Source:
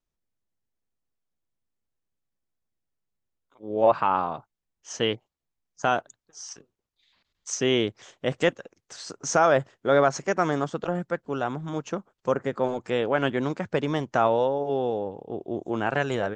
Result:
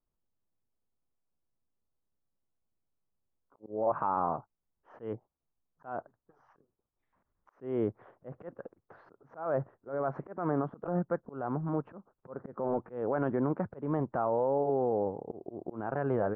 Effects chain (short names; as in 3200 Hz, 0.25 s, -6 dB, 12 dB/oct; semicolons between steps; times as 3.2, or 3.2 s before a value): LPF 1300 Hz 24 dB/oct; limiter -20 dBFS, peak gain reduction 11.5 dB; auto swell 0.221 s